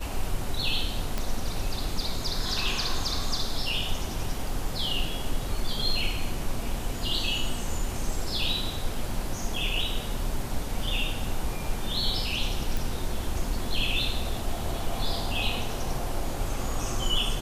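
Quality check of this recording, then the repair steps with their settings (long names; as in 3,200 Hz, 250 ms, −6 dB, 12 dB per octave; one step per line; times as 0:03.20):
0:01.18: click
0:12.77: click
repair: click removal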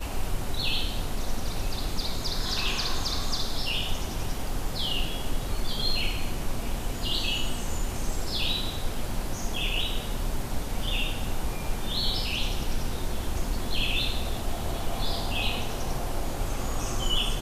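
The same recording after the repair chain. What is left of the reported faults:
none of them is left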